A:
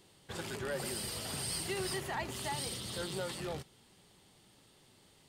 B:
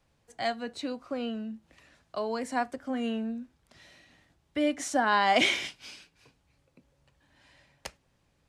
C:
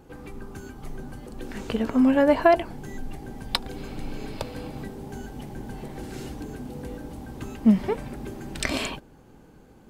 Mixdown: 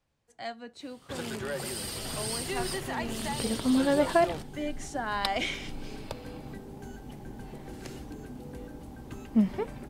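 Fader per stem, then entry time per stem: +3.0, -7.5, -6.0 dB; 0.80, 0.00, 1.70 s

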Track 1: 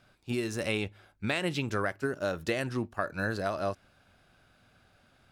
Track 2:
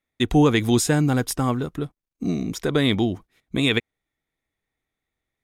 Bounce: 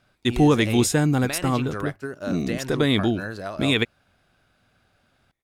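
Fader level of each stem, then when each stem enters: -1.0, -0.5 dB; 0.00, 0.05 s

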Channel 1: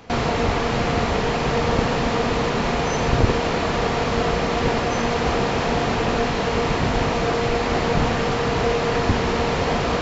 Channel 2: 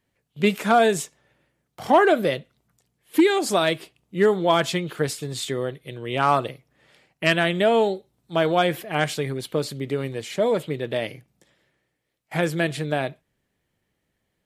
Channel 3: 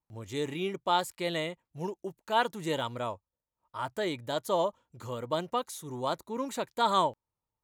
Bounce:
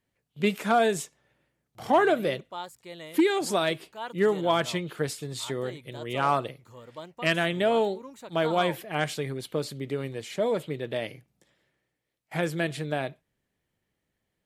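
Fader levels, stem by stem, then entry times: off, -5.0 dB, -10.5 dB; off, 0.00 s, 1.65 s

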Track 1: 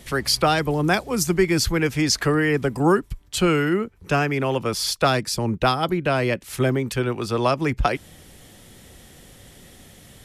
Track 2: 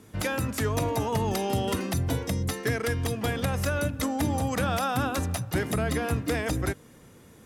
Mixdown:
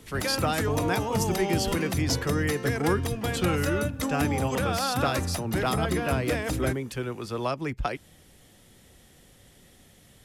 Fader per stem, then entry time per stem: -8.5, -1.0 dB; 0.00, 0.00 s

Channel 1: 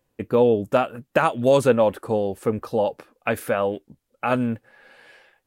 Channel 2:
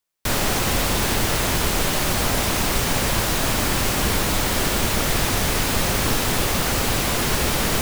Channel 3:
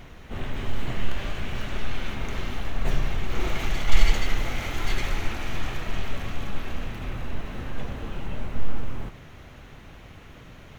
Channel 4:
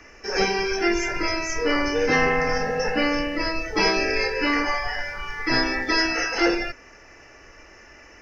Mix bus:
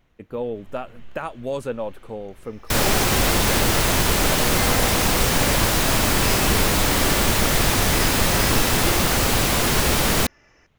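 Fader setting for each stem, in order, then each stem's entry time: -10.5, +2.0, -19.0, -9.5 dB; 0.00, 2.45, 0.00, 2.45 s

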